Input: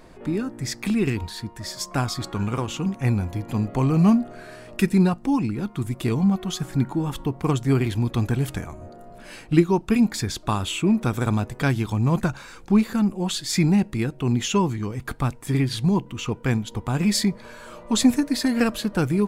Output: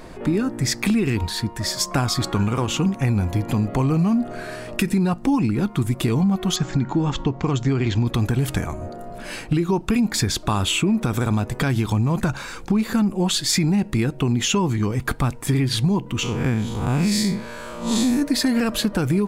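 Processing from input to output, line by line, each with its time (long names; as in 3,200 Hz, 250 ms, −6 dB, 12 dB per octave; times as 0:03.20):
0:06.56–0:08.07: elliptic low-pass filter 7,100 Hz
0:16.23–0:18.22: spectrum smeared in time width 144 ms
whole clip: brickwall limiter −16 dBFS; downward compressor 3 to 1, threshold −26 dBFS; level +8.5 dB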